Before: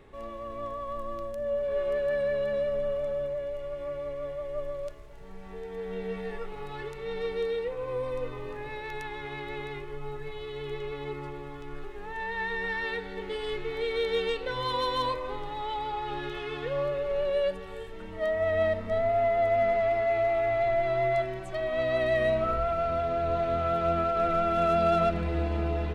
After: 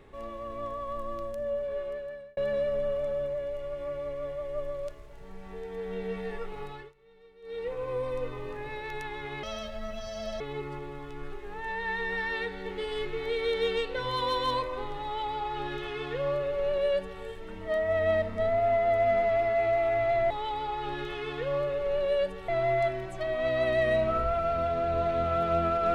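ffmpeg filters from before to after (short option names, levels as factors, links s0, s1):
-filter_complex "[0:a]asplit=8[s0][s1][s2][s3][s4][s5][s6][s7];[s0]atrim=end=2.37,asetpts=PTS-STARTPTS,afade=t=out:st=1.33:d=1.04[s8];[s1]atrim=start=2.37:end=6.93,asetpts=PTS-STARTPTS,afade=t=in:d=0.004:c=hsin,afade=t=out:st=4.26:d=0.3:silence=0.0630957[s9];[s2]atrim=start=6.93:end=7.42,asetpts=PTS-STARTPTS,volume=0.0631[s10];[s3]atrim=start=7.42:end=9.434,asetpts=PTS-STARTPTS,afade=t=in:d=0.3:silence=0.0630957[s11];[s4]atrim=start=9.43:end=10.92,asetpts=PTS-STARTPTS,asetrate=67473,aresample=44100,atrim=end_sample=42947,asetpts=PTS-STARTPTS[s12];[s5]atrim=start=10.916:end=20.822[s13];[s6]atrim=start=15.548:end=17.732[s14];[s7]atrim=start=20.818[s15];[s8][s9][s10][s11]concat=n=4:v=0:a=1[s16];[s16][s12]acrossfade=d=0.004:c1=hsin:c2=hsin[s17];[s17][s13]acrossfade=d=0.004:c1=hsin:c2=hsin[s18];[s18][s14]acrossfade=d=0.004:c1=hsin:c2=hsin[s19];[s19][s15]acrossfade=d=0.004:c1=hsin:c2=hsin"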